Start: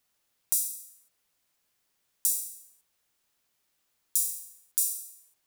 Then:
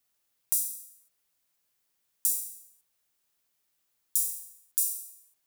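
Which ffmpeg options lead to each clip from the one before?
-af "crystalizer=i=0.5:c=0,volume=-4.5dB"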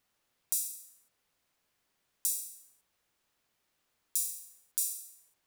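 -af "lowpass=f=2.8k:p=1,volume=6.5dB"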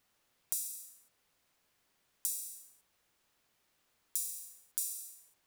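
-af "acompressor=threshold=-37dB:ratio=2.5,acrusher=bits=8:mode=log:mix=0:aa=0.000001,volume=2.5dB"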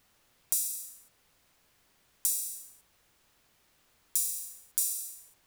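-filter_complex "[0:a]lowshelf=f=120:g=7.5,asplit=2[a][b];[b]volume=28.5dB,asoftclip=hard,volume=-28.5dB,volume=-4.5dB[c];[a][c]amix=inputs=2:normalize=0,volume=3.5dB"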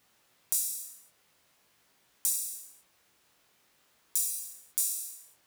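-af "highpass=f=170:p=1,flanger=delay=17:depth=7.9:speed=0.46,volume=3.5dB"

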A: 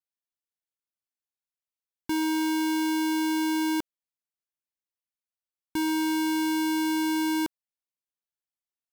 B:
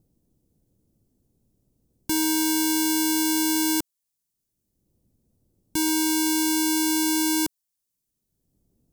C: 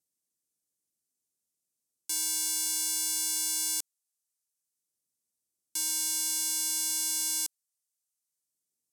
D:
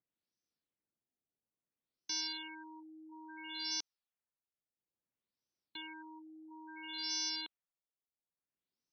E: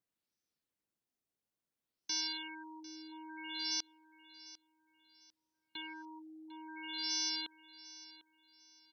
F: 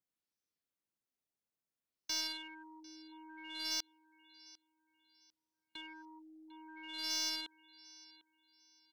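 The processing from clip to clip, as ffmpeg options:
-filter_complex "[0:a]bass=f=250:g=6,treble=f=4k:g=15,acrossover=split=410|4800[a][b][c];[a]acompressor=mode=upward:threshold=-38dB:ratio=2.5[d];[d][b][c]amix=inputs=3:normalize=0"
-af "bandpass=f=8k:t=q:w=1:csg=0"
-af "afftfilt=real='re*lt(b*sr/1024,790*pow(6400/790,0.5+0.5*sin(2*PI*0.59*pts/sr)))':imag='im*lt(b*sr/1024,790*pow(6400/790,0.5+0.5*sin(2*PI*0.59*pts/sr)))':win_size=1024:overlap=0.75"
-af "aecho=1:1:749|1498|2247:0.133|0.0387|0.0112,volume=1.5dB"
-filter_complex "[0:a]asplit=2[a][b];[b]acrusher=bits=3:mix=0:aa=0.5,volume=-8dB[c];[a][c]amix=inputs=2:normalize=0,aeval=exprs='0.0794*(cos(1*acos(clip(val(0)/0.0794,-1,1)))-cos(1*PI/2))+0.00355*(cos(4*acos(clip(val(0)/0.0794,-1,1)))-cos(4*PI/2))+0.00398*(cos(7*acos(clip(val(0)/0.0794,-1,1)))-cos(7*PI/2))':c=same,volume=-1dB"

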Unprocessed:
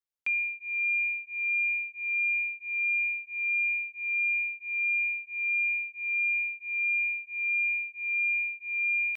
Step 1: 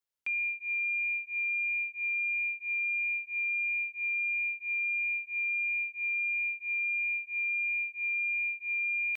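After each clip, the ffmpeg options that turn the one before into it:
-af "alimiter=level_in=5.5dB:limit=-24dB:level=0:latency=1,volume=-5.5dB,volume=1.5dB"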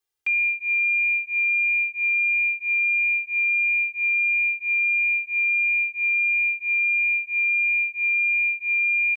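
-af "aecho=1:1:2.5:0.95,volume=4dB"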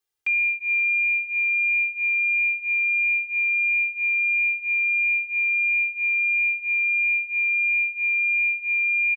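-af "aecho=1:1:531|1062|1593:0.188|0.0584|0.0181"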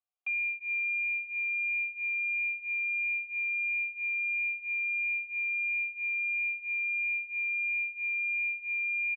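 -filter_complex "[0:a]asplit=3[a][b][c];[a]bandpass=f=730:t=q:w=8,volume=0dB[d];[b]bandpass=f=1.09k:t=q:w=8,volume=-6dB[e];[c]bandpass=f=2.44k:t=q:w=8,volume=-9dB[f];[d][e][f]amix=inputs=3:normalize=0"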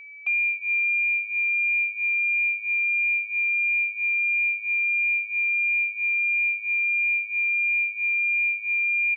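-af "aeval=exprs='val(0)+0.00398*sin(2*PI*2300*n/s)':c=same,volume=8dB"

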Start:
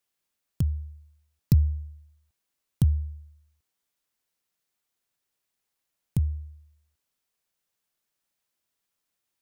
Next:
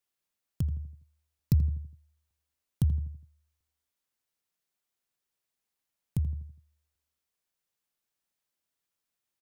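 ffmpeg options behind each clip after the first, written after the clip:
-filter_complex "[0:a]asplit=2[a][b];[b]adelay=82,lowpass=f=1.5k:p=1,volume=-12dB,asplit=2[c][d];[d]adelay=82,lowpass=f=1.5k:p=1,volume=0.47,asplit=2[e][f];[f]adelay=82,lowpass=f=1.5k:p=1,volume=0.47,asplit=2[g][h];[h]adelay=82,lowpass=f=1.5k:p=1,volume=0.47,asplit=2[i][j];[j]adelay=82,lowpass=f=1.5k:p=1,volume=0.47[k];[a][c][e][g][i][k]amix=inputs=6:normalize=0,volume=-4.5dB"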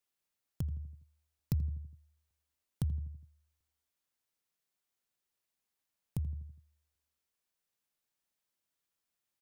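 -af "acompressor=threshold=-40dB:ratio=1.5,volume=-1.5dB"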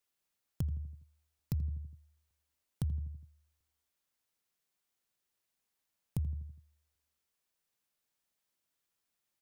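-af "alimiter=level_in=0.5dB:limit=-24dB:level=0:latency=1:release=354,volume=-0.5dB,volume=2dB"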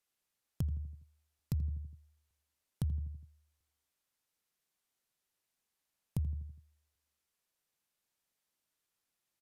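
-af "aresample=32000,aresample=44100"

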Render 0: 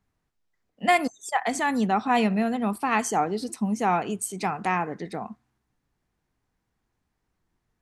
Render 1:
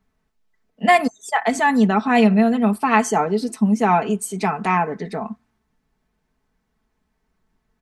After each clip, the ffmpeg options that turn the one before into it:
-af "highshelf=f=4.4k:g=-5.5,aecho=1:1:4.6:0.65,volume=5dB"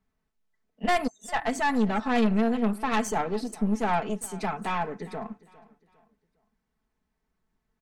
-af "aeval=exprs='(tanh(5.01*val(0)+0.65)-tanh(0.65))/5.01':c=same,aecho=1:1:405|810|1215:0.0944|0.034|0.0122,volume=-4.5dB"

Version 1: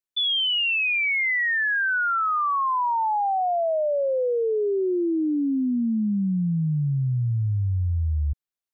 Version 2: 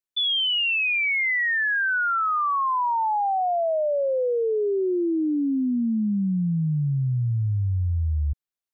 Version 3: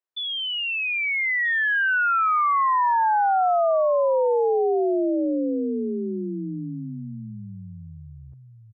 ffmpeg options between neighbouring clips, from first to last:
-af anull
-filter_complex "[0:a]highpass=110,acrossover=split=290 2100:gain=0.126 1 0.251[a][b][c];[a][b][c]amix=inputs=3:normalize=0,asplit=2[d][e];[e]adelay=1283,volume=-9dB,highshelf=f=4k:g=-28.9[f];[d][f]amix=inputs=2:normalize=0,volume=3.5dB"

